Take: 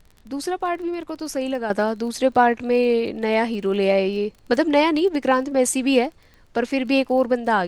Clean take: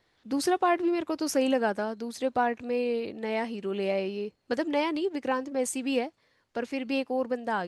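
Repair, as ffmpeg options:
ffmpeg -i in.wav -af "adeclick=threshold=4,agate=range=-21dB:threshold=-42dB,asetnsamples=nb_out_samples=441:pad=0,asendcmd='1.7 volume volume -10dB',volume=0dB" out.wav

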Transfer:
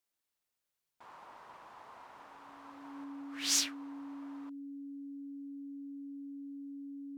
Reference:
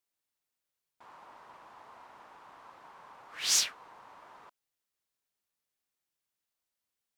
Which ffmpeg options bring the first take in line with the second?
ffmpeg -i in.wav -af "bandreject=frequency=280:width=30,asetnsamples=nb_out_samples=441:pad=0,asendcmd='3.04 volume volume 3.5dB',volume=0dB" out.wav

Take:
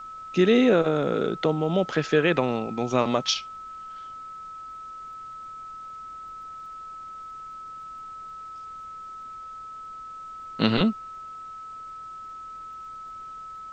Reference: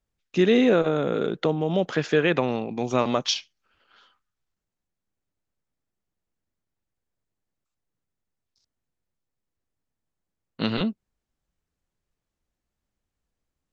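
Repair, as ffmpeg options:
ffmpeg -i in.wav -af "adeclick=threshold=4,bandreject=frequency=1300:width=30,agate=range=-21dB:threshold=-32dB,asetnsamples=nb_out_samples=441:pad=0,asendcmd='5.91 volume volume -4dB',volume=0dB" out.wav

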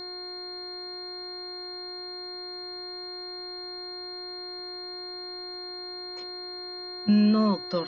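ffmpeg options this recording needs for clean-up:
ffmpeg -i in.wav -af "bandreject=frequency=360.1:width_type=h:width=4,bandreject=frequency=720.2:width_type=h:width=4,bandreject=frequency=1080.3:width_type=h:width=4,bandreject=frequency=1440.4:width_type=h:width=4,bandreject=frequency=1800.5:width_type=h:width=4,bandreject=frequency=2160.6:width_type=h:width=4,bandreject=frequency=4200:width=30,agate=range=-21dB:threshold=-30dB" out.wav

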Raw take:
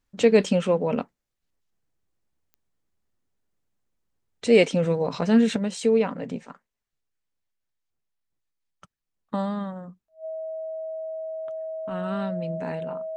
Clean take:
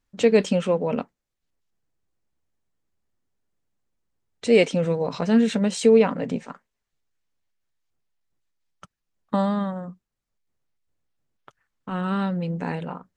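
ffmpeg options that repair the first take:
ffmpeg -i in.wav -af "adeclick=threshold=4,bandreject=frequency=640:width=30,asetnsamples=nb_out_samples=441:pad=0,asendcmd='5.56 volume volume 5dB',volume=0dB" out.wav

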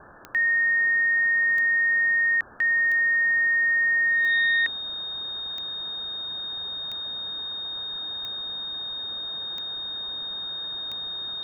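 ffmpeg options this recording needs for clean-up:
ffmpeg -i in.wav -af "adeclick=threshold=4,bandreject=frequency=3700:width=30,afwtdn=0.013" out.wav

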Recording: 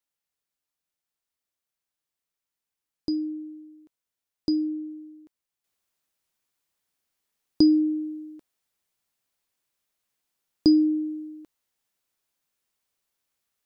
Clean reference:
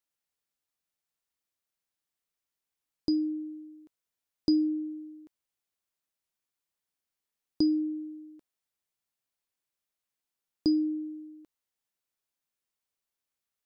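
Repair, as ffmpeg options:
ffmpeg -i in.wav -af "asetnsamples=nb_out_samples=441:pad=0,asendcmd='5.64 volume volume -7.5dB',volume=0dB" out.wav

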